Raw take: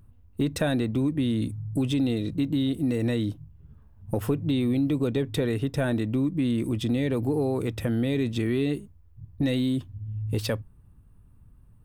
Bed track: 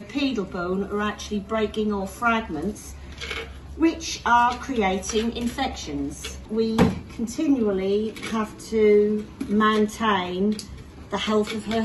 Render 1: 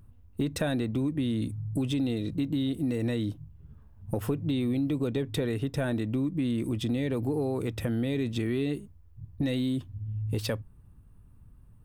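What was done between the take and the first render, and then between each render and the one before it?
compressor 1.5:1, threshold -31 dBFS, peak gain reduction 4 dB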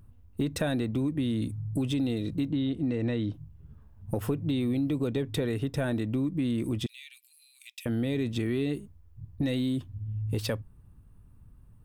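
2.51–3.34 LPF 3900 Hz; 6.86–7.86 elliptic high-pass 2400 Hz, stop band 80 dB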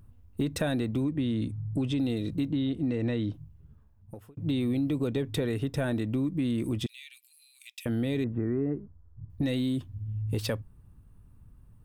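1.04–1.99 air absorption 64 m; 3.29–4.37 fade out; 8.24–9.3 steep low-pass 1600 Hz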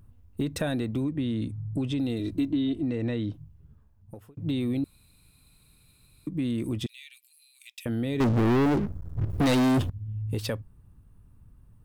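2.19–2.83 comb 3 ms; 4.84–6.27 room tone; 8.2–9.9 sample leveller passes 5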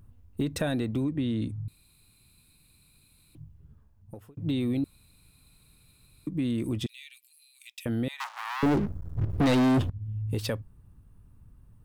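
1.68–3.35 room tone; 8.08–8.63 steep high-pass 860 Hz 48 dB/oct; 9.26–10.02 high shelf 5500 Hz -7.5 dB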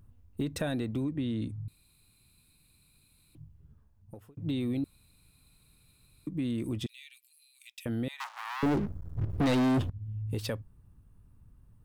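gain -3.5 dB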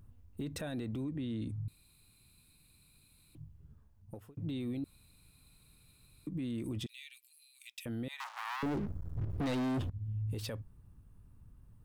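limiter -31 dBFS, peak gain reduction 10.5 dB

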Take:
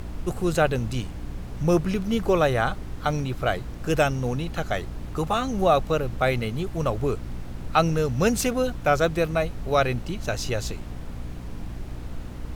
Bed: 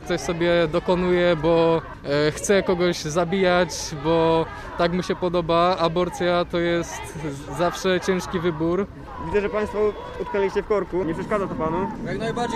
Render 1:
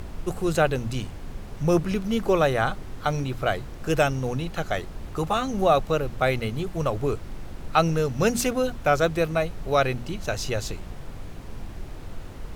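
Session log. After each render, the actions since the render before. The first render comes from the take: notches 60/120/180/240/300 Hz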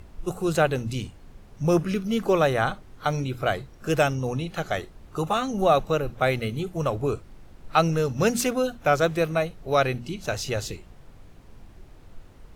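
noise print and reduce 11 dB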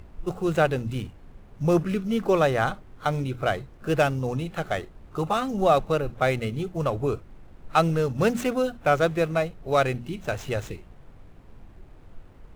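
median filter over 9 samples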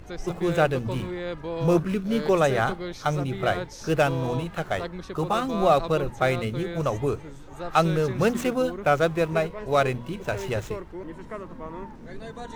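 add bed -13.5 dB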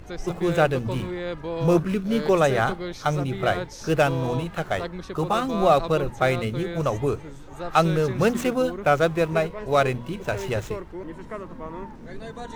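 gain +1.5 dB

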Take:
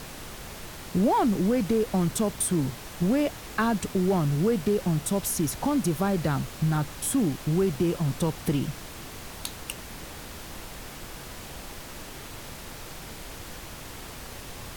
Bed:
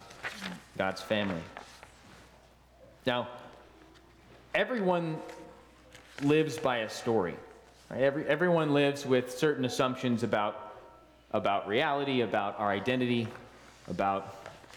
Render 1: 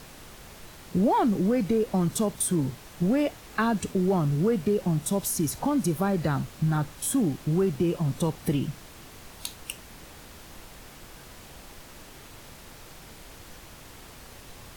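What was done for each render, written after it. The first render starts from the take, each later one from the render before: noise print and reduce 6 dB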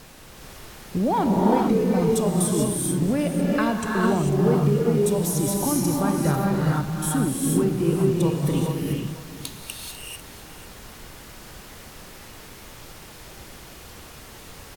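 echo 0.496 s -14.5 dB; non-linear reverb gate 0.47 s rising, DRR -2 dB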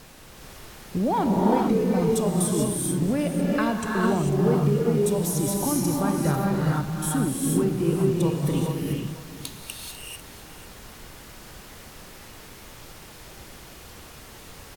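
gain -1.5 dB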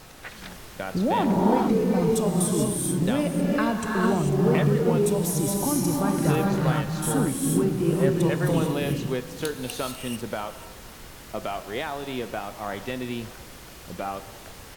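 add bed -2.5 dB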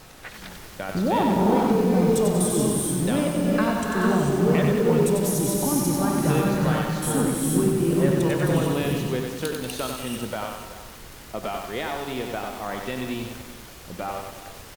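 echo 0.38 s -15 dB; lo-fi delay 94 ms, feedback 55%, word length 7-bit, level -4 dB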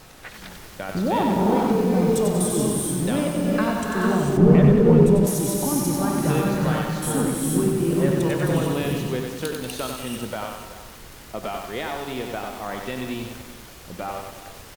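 4.37–5.27 tilt -3 dB/oct

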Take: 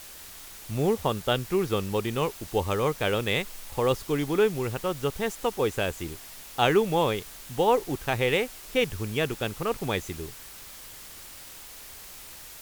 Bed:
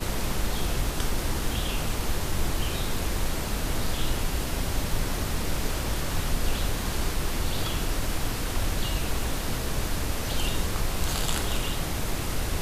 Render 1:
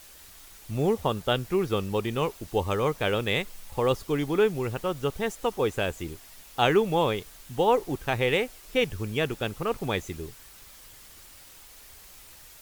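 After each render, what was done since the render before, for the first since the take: denoiser 6 dB, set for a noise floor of -45 dBFS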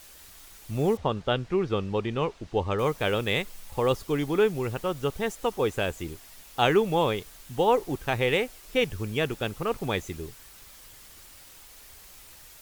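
0.97–2.79 air absorption 120 m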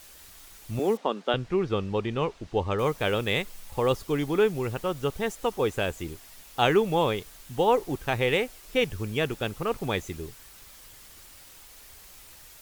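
0.79–1.34 steep high-pass 210 Hz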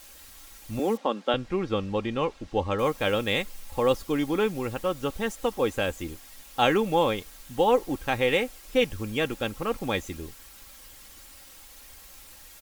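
comb 3.7 ms, depth 45%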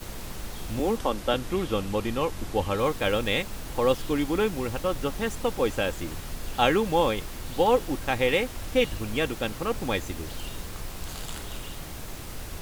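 add bed -9.5 dB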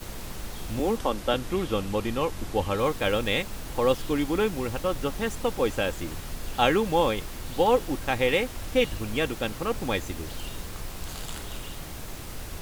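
nothing audible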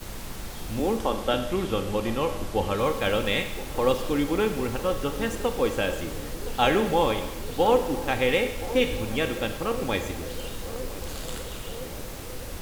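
narrowing echo 1.017 s, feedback 75%, band-pass 440 Hz, level -14 dB; Schroeder reverb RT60 1 s, combs from 28 ms, DRR 7.5 dB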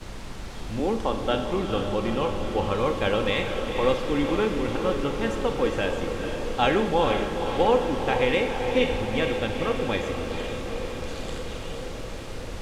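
air absorption 69 m; diffused feedback echo 0.469 s, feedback 64%, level -7 dB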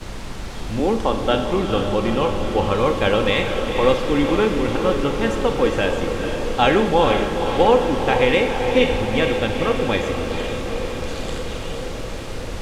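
gain +6 dB; limiter -3 dBFS, peak gain reduction 1 dB

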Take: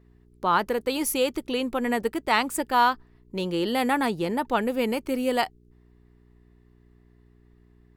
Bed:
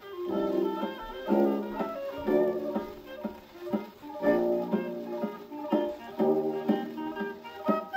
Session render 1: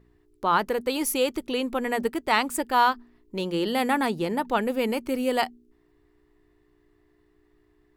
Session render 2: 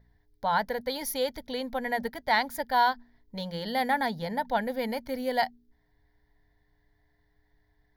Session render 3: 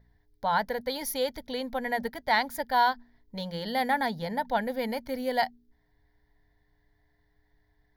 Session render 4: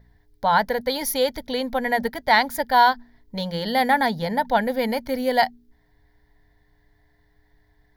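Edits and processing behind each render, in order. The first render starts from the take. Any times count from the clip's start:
de-hum 60 Hz, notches 4
fixed phaser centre 1800 Hz, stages 8
nothing audible
gain +7.5 dB

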